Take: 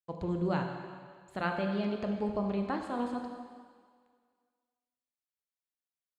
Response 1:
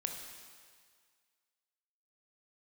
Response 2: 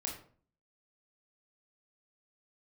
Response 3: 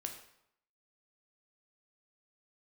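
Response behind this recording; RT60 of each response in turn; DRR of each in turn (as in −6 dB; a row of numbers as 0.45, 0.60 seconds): 1; 1.8, 0.45, 0.75 seconds; 3.0, −1.0, 3.5 decibels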